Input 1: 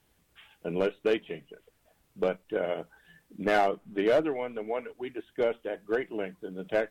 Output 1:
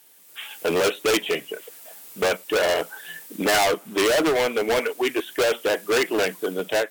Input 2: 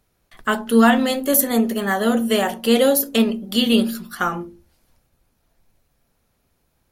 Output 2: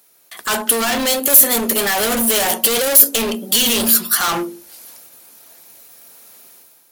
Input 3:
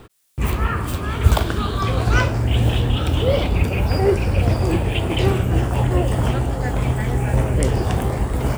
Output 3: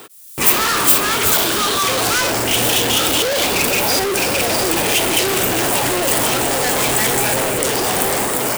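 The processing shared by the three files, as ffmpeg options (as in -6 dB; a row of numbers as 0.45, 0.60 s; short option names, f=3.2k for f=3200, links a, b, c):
-af "highpass=340,dynaudnorm=f=110:g=7:m=10.5dB,alimiter=limit=-10.5dB:level=0:latency=1:release=32,asoftclip=type=hard:threshold=-25dB,crystalizer=i=3:c=0,volume=6.5dB"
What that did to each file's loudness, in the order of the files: +8.0, +5.0, +5.5 LU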